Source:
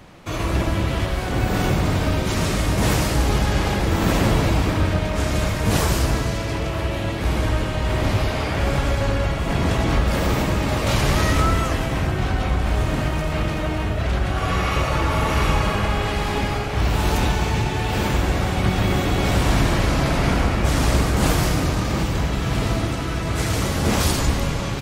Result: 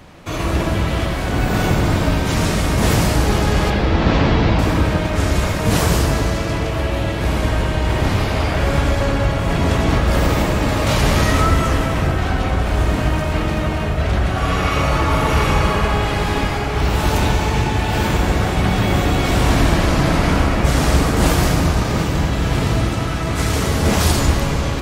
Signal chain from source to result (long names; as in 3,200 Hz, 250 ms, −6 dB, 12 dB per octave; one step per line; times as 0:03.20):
0:03.70–0:04.59: low-pass filter 4,900 Hz 24 dB per octave
dense smooth reverb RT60 3.7 s, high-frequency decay 0.3×, DRR 5.5 dB
level +2.5 dB